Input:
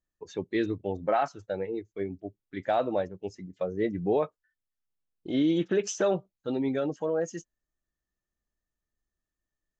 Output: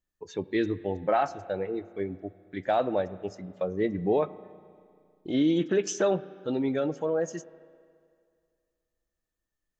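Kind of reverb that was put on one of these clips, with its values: spring tank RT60 2.2 s, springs 32/39 ms, chirp 25 ms, DRR 16.5 dB; trim +1 dB

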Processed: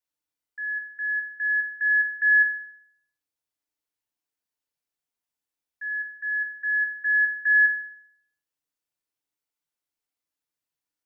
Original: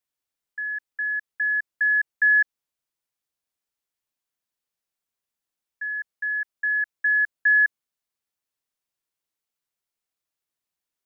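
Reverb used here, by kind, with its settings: FDN reverb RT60 0.7 s, low-frequency decay 0.95×, high-frequency decay 0.75×, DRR 0 dB; trim -5.5 dB

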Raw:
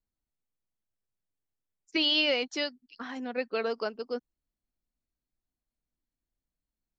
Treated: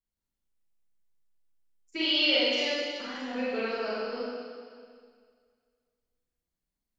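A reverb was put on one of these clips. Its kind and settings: Schroeder reverb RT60 2 s, combs from 32 ms, DRR -9.5 dB; trim -8 dB

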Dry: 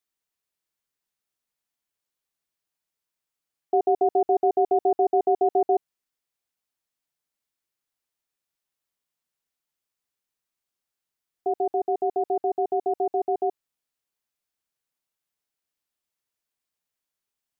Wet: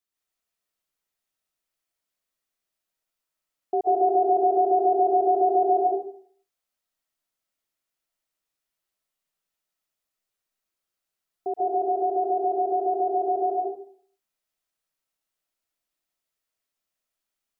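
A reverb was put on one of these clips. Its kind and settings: algorithmic reverb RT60 0.54 s, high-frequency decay 0.6×, pre-delay 105 ms, DRR -4 dB; trim -3.5 dB

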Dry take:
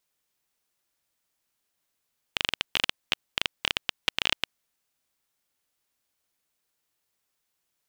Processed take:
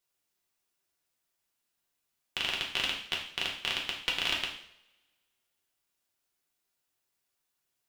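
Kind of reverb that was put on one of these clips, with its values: two-slope reverb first 0.61 s, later 1.8 s, from -26 dB, DRR -2.5 dB; trim -7 dB

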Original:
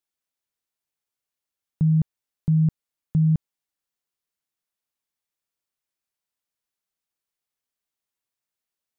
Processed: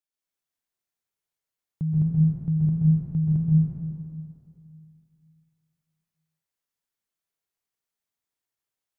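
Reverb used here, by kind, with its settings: plate-style reverb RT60 2.5 s, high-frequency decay 0.65×, pre-delay 115 ms, DRR -6 dB; trim -7.5 dB

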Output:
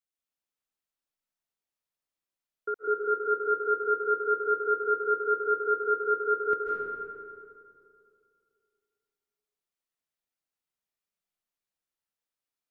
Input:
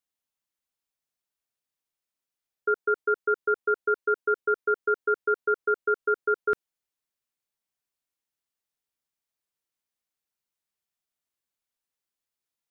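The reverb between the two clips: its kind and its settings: algorithmic reverb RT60 2.5 s, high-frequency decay 0.5×, pre-delay 115 ms, DRR -4 dB; trim -7.5 dB

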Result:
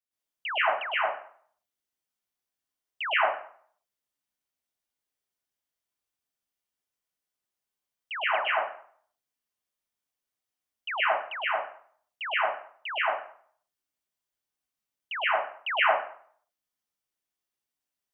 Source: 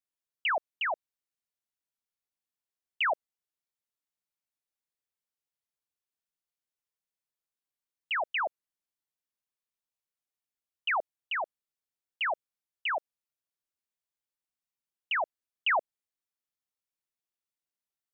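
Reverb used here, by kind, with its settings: plate-style reverb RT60 0.54 s, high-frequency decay 0.8×, pre-delay 100 ms, DRR -9 dB; trim -5 dB

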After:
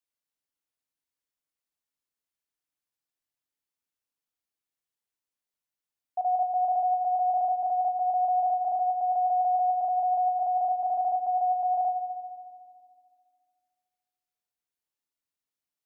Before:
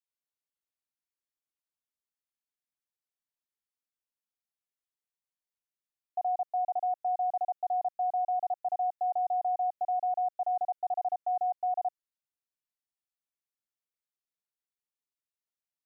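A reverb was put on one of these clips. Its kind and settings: FDN reverb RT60 2 s, low-frequency decay 1.45×, high-frequency decay 0.8×, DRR 7 dB; trim +1.5 dB

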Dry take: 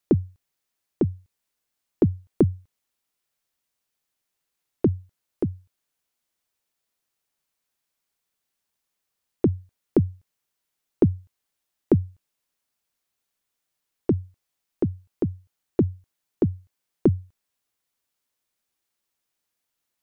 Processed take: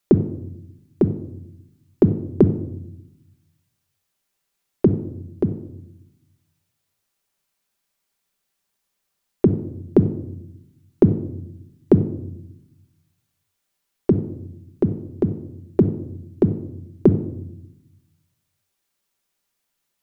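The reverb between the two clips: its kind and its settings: simulated room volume 2200 m³, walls furnished, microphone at 1.2 m; trim +4 dB

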